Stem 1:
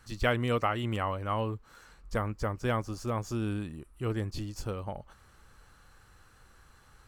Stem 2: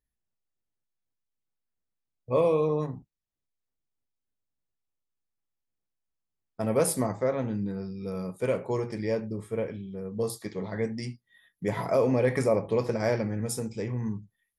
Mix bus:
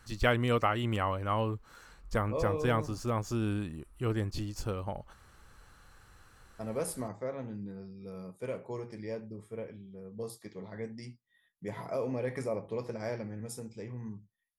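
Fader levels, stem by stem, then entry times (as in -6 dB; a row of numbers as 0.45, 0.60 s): +0.5, -10.0 dB; 0.00, 0.00 s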